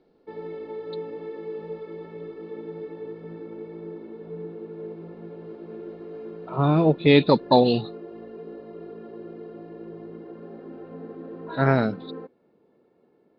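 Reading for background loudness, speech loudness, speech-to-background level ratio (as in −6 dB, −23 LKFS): −38.5 LKFS, −20.5 LKFS, 18.0 dB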